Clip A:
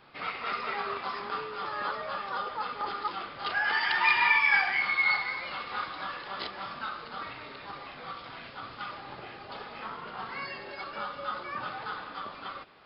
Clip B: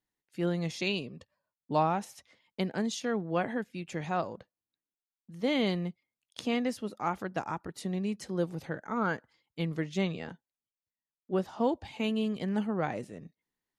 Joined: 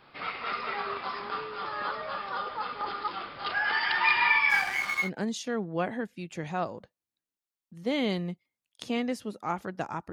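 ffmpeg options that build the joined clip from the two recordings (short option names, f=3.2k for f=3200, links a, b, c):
-filter_complex "[0:a]asplit=3[a][b][c];[a]afade=t=out:st=4.49:d=0.02[d];[b]aeval=exprs='sgn(val(0))*max(abs(val(0))-0.0112,0)':c=same,afade=t=in:st=4.49:d=0.02,afade=t=out:st=5.1:d=0.02[e];[c]afade=t=in:st=5.1:d=0.02[f];[d][e][f]amix=inputs=3:normalize=0,apad=whole_dur=10.12,atrim=end=10.12,atrim=end=5.1,asetpts=PTS-STARTPTS[g];[1:a]atrim=start=2.57:end=7.69,asetpts=PTS-STARTPTS[h];[g][h]acrossfade=d=0.1:c1=tri:c2=tri"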